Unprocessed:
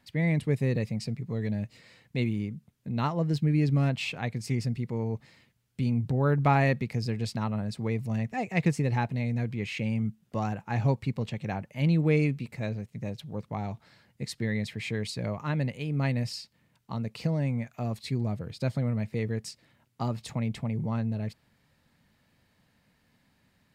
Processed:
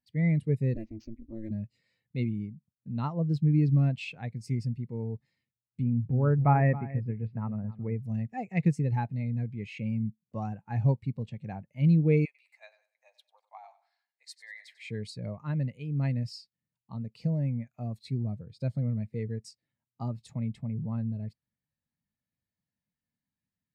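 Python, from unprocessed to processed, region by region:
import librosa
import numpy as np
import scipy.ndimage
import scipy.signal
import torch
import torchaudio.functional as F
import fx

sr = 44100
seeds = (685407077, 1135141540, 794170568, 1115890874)

y = fx.chain(x, sr, fx.ring_mod(carrier_hz=110.0),
    fx.resample_linear(factor=4), at=(0.74, 1.51))
y = fx.chain(y, sr, fx.lowpass(hz=2400.0, slope=24),
    fx.echo_single(ms=273, db=-12.0), at=(5.82, 8.03))
y = fx.chain(y, sr, fx.steep_highpass(hz=700.0, slope=36),
    fx.echo_feedback(ms=95, feedback_pct=44, wet_db=-11), at=(12.25, 14.9))
y = fx.high_shelf(y, sr, hz=5000.0, db=7.5)
y = fx.spectral_expand(y, sr, expansion=1.5)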